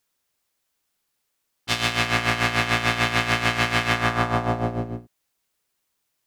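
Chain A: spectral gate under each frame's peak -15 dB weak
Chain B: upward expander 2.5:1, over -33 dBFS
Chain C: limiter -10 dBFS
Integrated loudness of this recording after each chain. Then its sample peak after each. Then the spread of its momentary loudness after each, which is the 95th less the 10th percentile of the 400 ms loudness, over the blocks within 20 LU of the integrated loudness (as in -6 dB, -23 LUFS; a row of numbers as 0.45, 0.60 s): -33.5, -25.5, -25.5 LUFS; -15.0, -3.0, -10.0 dBFS; 10, 8, 7 LU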